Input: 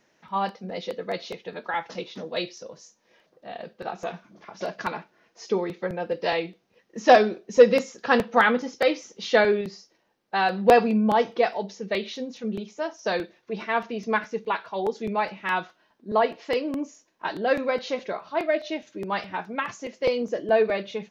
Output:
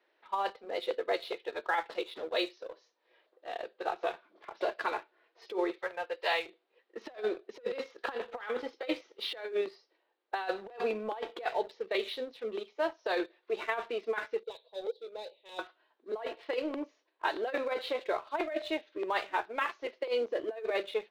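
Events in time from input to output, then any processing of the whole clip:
0:05.78–0:06.46: high-pass filter 780 Hz
0:14.43–0:15.59: pair of resonant band-passes 1,400 Hz, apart 2.9 octaves
whole clip: elliptic band-pass filter 350–4,000 Hz, stop band 40 dB; leveller curve on the samples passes 1; compressor whose output falls as the input rises −23 dBFS, ratio −0.5; level −8 dB

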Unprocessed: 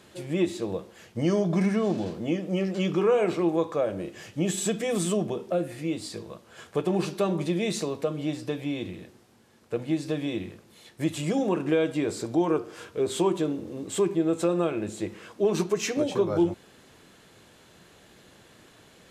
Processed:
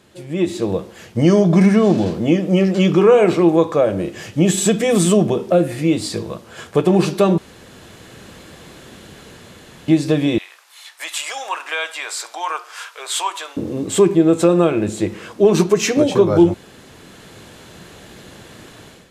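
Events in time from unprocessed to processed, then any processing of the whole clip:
0:07.38–0:09.88: fill with room tone
0:10.38–0:13.57: high-pass filter 920 Hz 24 dB per octave
whole clip: low-shelf EQ 240 Hz +3.5 dB; automatic gain control gain up to 13 dB

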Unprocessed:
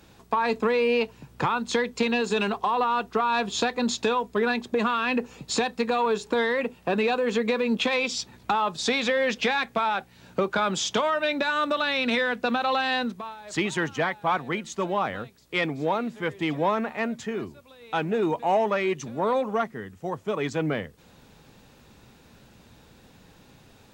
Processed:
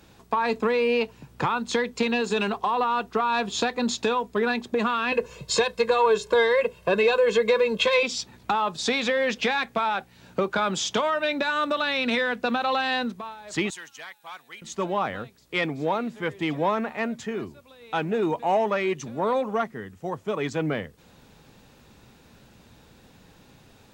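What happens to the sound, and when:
0:05.12–0:08.03: comb filter 1.9 ms, depth 98%
0:13.70–0:14.62: first-order pre-emphasis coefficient 0.97

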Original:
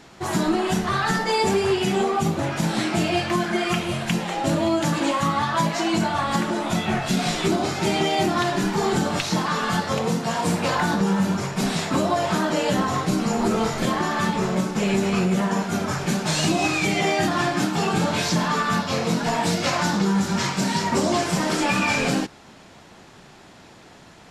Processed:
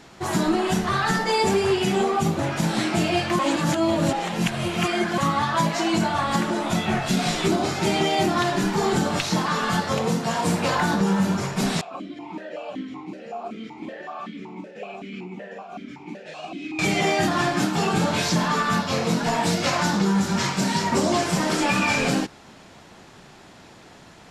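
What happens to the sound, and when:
0:03.39–0:05.18: reverse
0:11.81–0:16.79: formant filter that steps through the vowels 5.3 Hz

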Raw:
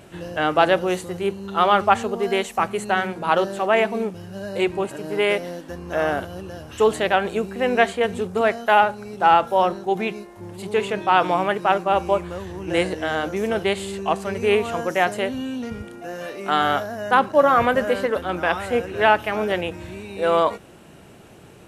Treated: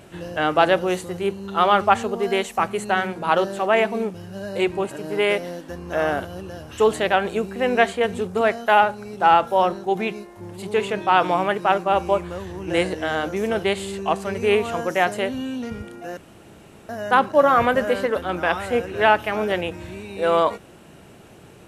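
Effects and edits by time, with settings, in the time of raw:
0:16.17–0:16.89: fill with room tone

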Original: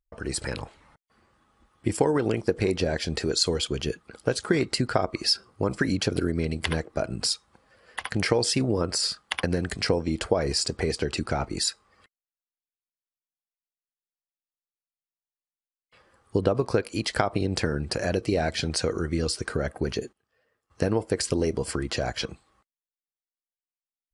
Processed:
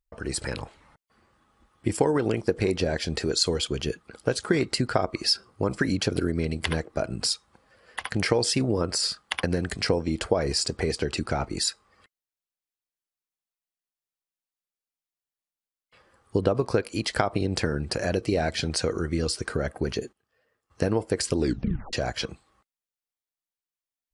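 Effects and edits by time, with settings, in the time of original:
0:21.37: tape stop 0.56 s

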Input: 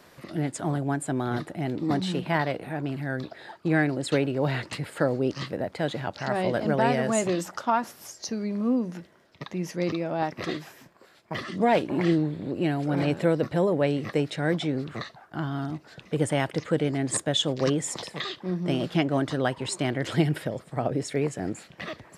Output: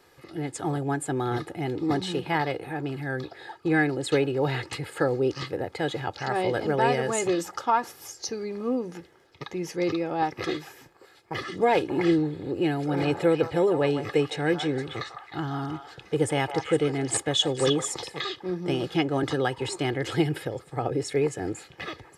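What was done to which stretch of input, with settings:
0:12.89–0:17.88: echo through a band-pass that steps 155 ms, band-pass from 1,000 Hz, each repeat 1.4 octaves, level −3 dB
0:19.23–0:19.76: multiband upward and downward compressor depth 70%
whole clip: automatic gain control gain up to 6 dB; comb filter 2.4 ms, depth 64%; level −6 dB

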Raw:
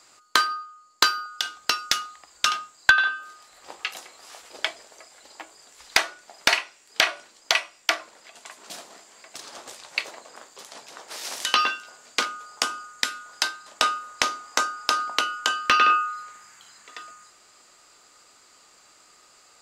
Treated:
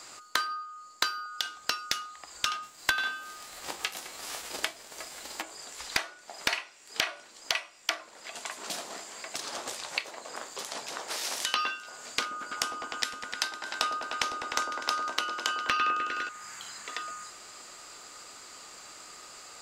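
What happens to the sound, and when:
0:02.62–0:05.41: spectral envelope flattened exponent 0.6
0:12.21–0:16.29: echo whose low-pass opens from repeat to repeat 101 ms, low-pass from 750 Hz, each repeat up 1 octave, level −6 dB
whole clip: downward compressor 2.5 to 1, threshold −42 dBFS; level +7.5 dB

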